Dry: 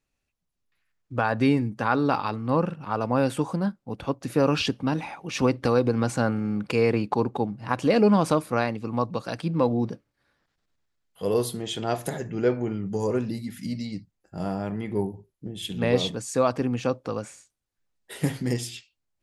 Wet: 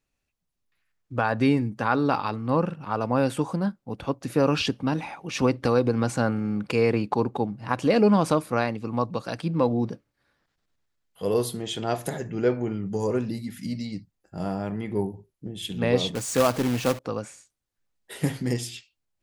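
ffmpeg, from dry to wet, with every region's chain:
-filter_complex "[0:a]asettb=1/sr,asplit=3[s0][s1][s2];[s0]atrim=end=16.154[s3];[s1]atrim=start=16.15:end=16.99,asetpts=PTS-STARTPTS,afade=t=in:d=0.004:c=qsin,afade=t=out:st=0.836:d=0.004:c=qsin,aeval=exprs='val(0)+0.5*0.0188*sgn(val(0))':c=same,acrusher=bits=2:mode=log:mix=0:aa=0.000001[s4];[s2]atrim=start=16.986[s5];[s3][s4]acrossfade=d=0.004:c1=hsin:c2=qsin[s6];[s6][s5]acrossfade=d=0.004:c1=qsin:c2=hsin"

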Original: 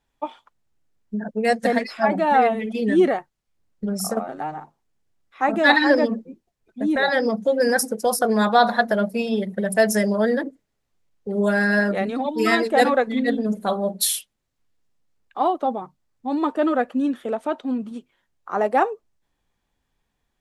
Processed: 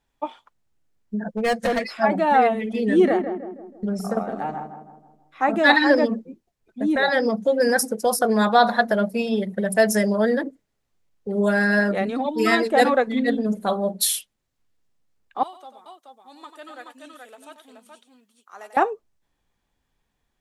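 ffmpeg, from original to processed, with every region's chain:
-filter_complex "[0:a]asettb=1/sr,asplit=3[s0][s1][s2];[s0]atrim=end=1.264[s3];[s1]atrim=start=1.26:end=1.9,asetpts=PTS-STARTPTS,afade=t=in:d=0.004:c=qsin,afade=t=out:st=0.636:d=0.004:c=qsin,volume=8.41,asoftclip=hard,volume=0.119,aecho=1:1:5.9:0.41,atrim=end_sample=28224[s4];[s2]atrim=start=1.896[s5];[s3][s4]acrossfade=d=0.004:c1=hsin:c2=qsin[s6];[s6][s5]acrossfade=d=0.004:c1=qsin:c2=hsin,asettb=1/sr,asplit=3[s7][s8][s9];[s7]atrim=end=2.574[s10];[s8]atrim=start=2.57:end=5.53,asetpts=PTS-STARTPTS,afade=t=in:d=0.004:c=qsin,afade=t=out:st=2.956:d=0.004:c=qsin,acrossover=split=3100[s11][s12];[s12]acompressor=threshold=0.00794:ratio=4:attack=1:release=60[s13];[s11][s13]amix=inputs=2:normalize=0,asplit=2[s14][s15];[s15]adelay=161,lowpass=f=1200:p=1,volume=0.422,asplit=2[s16][s17];[s17]adelay=161,lowpass=f=1200:p=1,volume=0.51,asplit=2[s18][s19];[s19]adelay=161,lowpass=f=1200:p=1,volume=0.51,asplit=2[s20][s21];[s21]adelay=161,lowpass=f=1200:p=1,volume=0.51,asplit=2[s22][s23];[s23]adelay=161,lowpass=f=1200:p=1,volume=0.51,asplit=2[s24][s25];[s25]adelay=161,lowpass=f=1200:p=1,volume=0.51[s26];[s14][s16][s18][s20][s22][s24][s26]amix=inputs=7:normalize=0,atrim=end_sample=130536[s27];[s9]atrim=start=5.526[s28];[s10][s27]acrossfade=d=0.004:c1=hsin:c2=qsin[s29];[s29][s28]acrossfade=d=0.004:c1=qsin:c2=hsin,asettb=1/sr,asplit=3[s30][s31][s32];[s30]atrim=end=15.434[s33];[s31]atrim=start=15.43:end=18.77,asetpts=PTS-STARTPTS,afade=t=in:d=0.004:c=qsin,afade=t=out:st=3.336:d=0.004:c=qsin,aderivative,aecho=1:1:93|427:0.335|0.631,atrim=end_sample=147294[s34];[s32]atrim=start=18.766[s35];[s33][s34]acrossfade=d=0.004:c1=hsin:c2=qsin[s36];[s36][s35]acrossfade=d=0.004:c1=qsin:c2=hsin"

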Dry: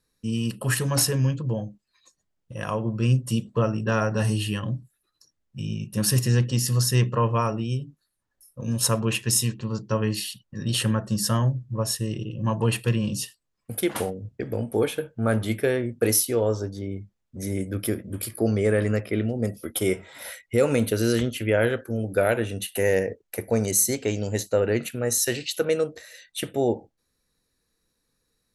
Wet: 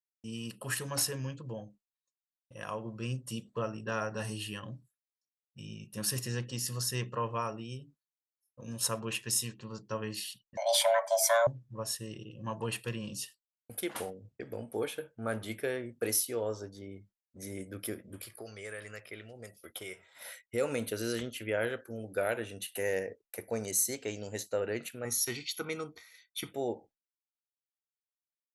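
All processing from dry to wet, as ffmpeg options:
-filter_complex "[0:a]asettb=1/sr,asplit=3[s0][s1][s2];[s0]atrim=end=10.574[s3];[s1]atrim=start=10.57:end=11.47,asetpts=PTS-STARTPTS,afade=t=in:d=0.004:c=qsin,afade=t=out:st=0.896:d=0.004:c=qsin,acontrast=77,afreqshift=460[s4];[s2]atrim=start=11.466[s5];[s3][s4]acrossfade=d=0.004:c1=hsin:c2=qsin[s6];[s6][s5]acrossfade=d=0.004:c1=qsin:c2=hsin,asettb=1/sr,asplit=3[s7][s8][s9];[s7]atrim=end=18.214[s10];[s8]atrim=start=18.21:end=20.21,asetpts=PTS-STARTPTS,afade=t=in:d=0.004:c=qsin,afade=t=out:st=1.996:d=0.004:c=qsin,equalizer=f=250:t=o:w=0.95:g=-8.5,acrossover=split=1300|4700[s11][s12][s13];[s11]acompressor=threshold=0.0224:ratio=4[s14];[s12]acompressor=threshold=0.0178:ratio=4[s15];[s13]acompressor=threshold=0.0126:ratio=4[s16];[s14][s15][s16]amix=inputs=3:normalize=0[s17];[s9]atrim=start=20.206[s18];[s10][s17]acrossfade=d=0.004:c1=hsin:c2=qsin[s19];[s19][s18]acrossfade=d=0.004:c1=qsin:c2=hsin,asettb=1/sr,asplit=3[s20][s21][s22];[s20]atrim=end=25.054[s23];[s21]atrim=start=25.05:end=26.53,asetpts=PTS-STARTPTS,afade=t=in:d=0.004:c=qsin,afade=t=out:st=1.476:d=0.004:c=qsin,equalizer=f=8000:w=4.9:g=-13,aecho=1:1:0.9:0.99,atrim=end_sample=65268[s24];[s22]atrim=start=26.526[s25];[s23][s24]acrossfade=d=0.004:c1=hsin:c2=qsin[s26];[s26][s25]acrossfade=d=0.004:c1=qsin:c2=hsin,agate=range=0.0224:threshold=0.00891:ratio=3:detection=peak,lowshelf=f=280:g=-10,volume=0.398"

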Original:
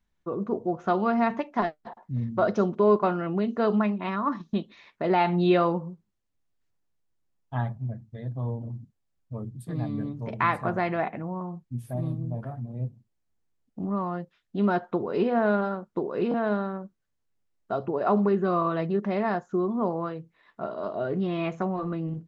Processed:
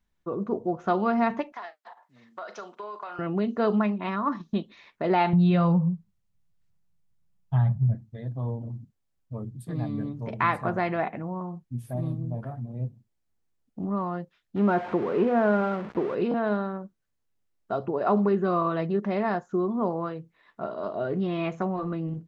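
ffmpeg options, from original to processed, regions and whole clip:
-filter_complex "[0:a]asettb=1/sr,asplit=3[s0][s1][s2];[s0]atrim=end=1.524[s3];[s1]atrim=start=1.52:end=3.19,asetpts=PTS-STARTPTS,afade=t=in:d=0.004:c=qsin,afade=t=out:st=1.666:d=0.004:c=qsin,highpass=970,acompressor=threshold=0.0224:ratio=10:attack=3.2:release=140:knee=1:detection=peak,asplit=2[s4][s5];[s5]adelay=39,volume=0.2[s6];[s4][s6]amix=inputs=2:normalize=0,atrim=end_sample=73647[s7];[s2]atrim=start=3.186[s8];[s3][s7]acrossfade=d=0.004:c1=hsin:c2=qsin[s9];[s9][s8]acrossfade=d=0.004:c1=qsin:c2=hsin,asettb=1/sr,asplit=3[s10][s11][s12];[s10]atrim=end=5.334[s13];[s11]atrim=start=5.33:end=7.95,asetpts=PTS-STARTPTS,afade=t=in:d=0.004:c=qsin,afade=t=out:st=2.616:d=0.004:c=qsin,lowshelf=f=220:t=q:w=3:g=7.5,bandreject=f=1700:w=25,acompressor=threshold=0.126:ratio=4:attack=3.2:release=140:knee=1:detection=peak[s14];[s12]atrim=start=7.946[s15];[s13][s14]acrossfade=d=0.004:c1=hsin:c2=qsin[s16];[s16][s15]acrossfade=d=0.004:c1=qsin:c2=hsin,asettb=1/sr,asplit=3[s17][s18][s19];[s17]atrim=end=14.564[s20];[s18]atrim=start=14.56:end=16.15,asetpts=PTS-STARTPTS,afade=t=in:d=0.004:c=qsin,afade=t=out:st=1.586:d=0.004:c=qsin,aeval=exprs='val(0)+0.5*0.0282*sgn(val(0))':c=same,highpass=100,lowpass=2100[s21];[s19]atrim=start=16.146[s22];[s20][s21]acrossfade=d=0.004:c1=hsin:c2=qsin[s23];[s23][s22]acrossfade=d=0.004:c1=qsin:c2=hsin"

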